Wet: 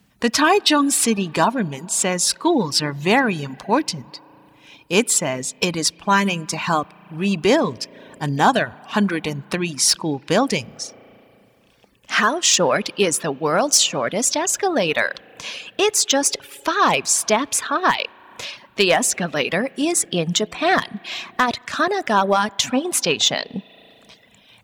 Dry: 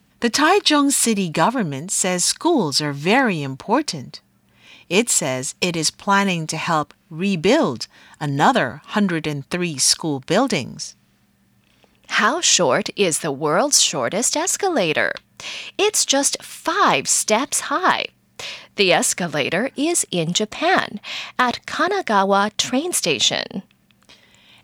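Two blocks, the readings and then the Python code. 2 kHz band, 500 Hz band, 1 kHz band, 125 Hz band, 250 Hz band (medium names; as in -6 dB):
-0.5 dB, -0.5 dB, -0.5 dB, -1.5 dB, -0.5 dB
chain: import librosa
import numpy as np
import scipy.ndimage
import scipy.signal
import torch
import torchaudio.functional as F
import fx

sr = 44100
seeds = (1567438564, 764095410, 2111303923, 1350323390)

y = fx.rev_spring(x, sr, rt60_s=2.6, pass_ms=(35,), chirp_ms=70, drr_db=14.0)
y = np.clip(y, -10.0 ** (-6.5 / 20.0), 10.0 ** (-6.5 / 20.0))
y = fx.dereverb_blind(y, sr, rt60_s=0.71)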